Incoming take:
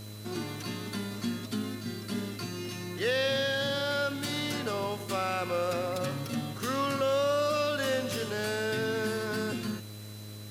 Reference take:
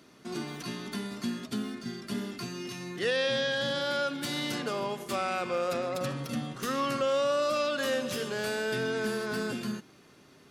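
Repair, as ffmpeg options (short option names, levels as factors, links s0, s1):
-af "adeclick=t=4,bandreject=f=105.4:t=h:w=4,bandreject=f=210.8:t=h:w=4,bandreject=f=316.2:t=h:w=4,bandreject=f=421.6:t=h:w=4,bandreject=f=527:t=h:w=4,bandreject=f=632.4:t=h:w=4,bandreject=f=4000:w=30,afwtdn=0.0025"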